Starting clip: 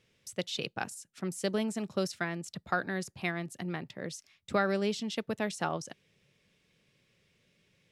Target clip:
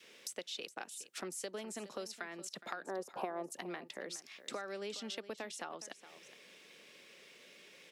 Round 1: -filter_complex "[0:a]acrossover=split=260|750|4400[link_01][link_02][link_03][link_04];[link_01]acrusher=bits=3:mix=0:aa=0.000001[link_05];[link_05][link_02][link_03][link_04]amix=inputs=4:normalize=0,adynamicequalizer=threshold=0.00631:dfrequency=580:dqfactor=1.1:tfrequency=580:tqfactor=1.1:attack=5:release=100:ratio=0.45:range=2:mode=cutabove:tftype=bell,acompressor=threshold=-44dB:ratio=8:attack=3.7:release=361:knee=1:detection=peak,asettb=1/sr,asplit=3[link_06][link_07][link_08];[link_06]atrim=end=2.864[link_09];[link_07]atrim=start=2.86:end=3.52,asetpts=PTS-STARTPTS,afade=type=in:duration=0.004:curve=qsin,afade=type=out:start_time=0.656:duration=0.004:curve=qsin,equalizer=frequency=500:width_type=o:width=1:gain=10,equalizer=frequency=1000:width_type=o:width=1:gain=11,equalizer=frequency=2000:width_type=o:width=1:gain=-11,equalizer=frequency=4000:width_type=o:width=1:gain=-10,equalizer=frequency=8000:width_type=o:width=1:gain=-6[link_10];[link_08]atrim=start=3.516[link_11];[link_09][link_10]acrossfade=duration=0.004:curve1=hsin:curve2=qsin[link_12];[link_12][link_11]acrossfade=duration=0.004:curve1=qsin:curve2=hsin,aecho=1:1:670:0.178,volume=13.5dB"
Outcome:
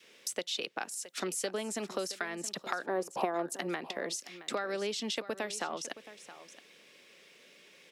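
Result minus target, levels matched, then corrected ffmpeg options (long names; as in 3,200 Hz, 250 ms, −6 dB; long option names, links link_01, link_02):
echo 254 ms late; downward compressor: peak gain reduction −8 dB
-filter_complex "[0:a]acrossover=split=260|750|4400[link_01][link_02][link_03][link_04];[link_01]acrusher=bits=3:mix=0:aa=0.000001[link_05];[link_05][link_02][link_03][link_04]amix=inputs=4:normalize=0,adynamicequalizer=threshold=0.00631:dfrequency=580:dqfactor=1.1:tfrequency=580:tqfactor=1.1:attack=5:release=100:ratio=0.45:range=2:mode=cutabove:tftype=bell,acompressor=threshold=-53dB:ratio=8:attack=3.7:release=361:knee=1:detection=peak,asettb=1/sr,asplit=3[link_06][link_07][link_08];[link_06]atrim=end=2.864[link_09];[link_07]atrim=start=2.86:end=3.52,asetpts=PTS-STARTPTS,afade=type=in:duration=0.004:curve=qsin,afade=type=out:start_time=0.656:duration=0.004:curve=qsin,equalizer=frequency=500:width_type=o:width=1:gain=10,equalizer=frequency=1000:width_type=o:width=1:gain=11,equalizer=frequency=2000:width_type=o:width=1:gain=-11,equalizer=frequency=4000:width_type=o:width=1:gain=-10,equalizer=frequency=8000:width_type=o:width=1:gain=-6[link_10];[link_08]atrim=start=3.516[link_11];[link_09][link_10]acrossfade=duration=0.004:curve1=hsin:curve2=qsin[link_12];[link_12][link_11]acrossfade=duration=0.004:curve1=qsin:curve2=hsin,aecho=1:1:416:0.178,volume=13.5dB"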